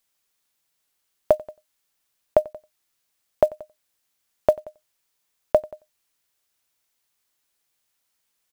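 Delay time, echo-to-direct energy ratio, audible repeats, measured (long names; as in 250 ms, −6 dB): 91 ms, −22.5 dB, 1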